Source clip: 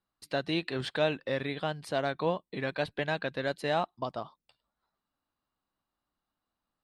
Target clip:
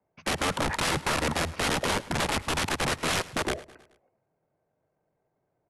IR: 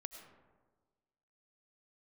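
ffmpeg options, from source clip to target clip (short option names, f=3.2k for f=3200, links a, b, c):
-filter_complex "[0:a]acrossover=split=160 2800:gain=0.158 1 0.112[a][b][c];[a][b][c]amix=inputs=3:normalize=0,acrossover=split=220|1700[d][e][f];[f]alimiter=level_in=11.5dB:limit=-24dB:level=0:latency=1:release=147,volume=-11.5dB[g];[d][e][g]amix=inputs=3:normalize=0,atempo=1.2,aeval=exprs='(mod(44.7*val(0)+1,2)-1)/44.7':c=same,asetrate=24046,aresample=44100,atempo=1.83401,aecho=1:1:107|214|321|428:0.106|0.0572|0.0309|0.0167,asplit=2[h][i];[1:a]atrim=start_sample=2205,atrim=end_sample=3528,highshelf=f=6.8k:g=-10[j];[i][j]afir=irnorm=-1:irlink=0,volume=5dB[k];[h][k]amix=inputs=2:normalize=0,volume=7dB"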